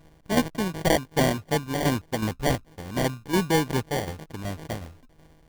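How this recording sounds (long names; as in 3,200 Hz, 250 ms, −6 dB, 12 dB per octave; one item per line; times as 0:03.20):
a buzz of ramps at a fixed pitch in blocks of 16 samples
tremolo saw down 2.7 Hz, depth 60%
aliases and images of a low sample rate 1,300 Hz, jitter 0%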